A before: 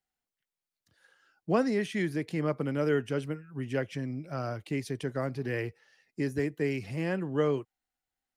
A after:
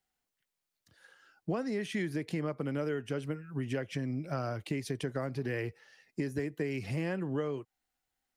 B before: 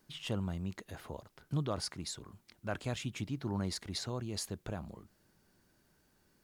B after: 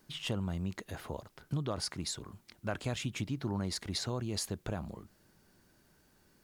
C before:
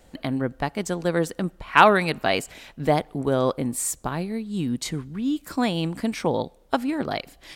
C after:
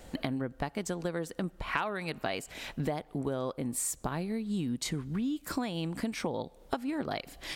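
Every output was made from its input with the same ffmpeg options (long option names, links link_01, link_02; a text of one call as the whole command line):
ffmpeg -i in.wav -af "acompressor=threshold=-34dB:ratio=10,volume=4dB" out.wav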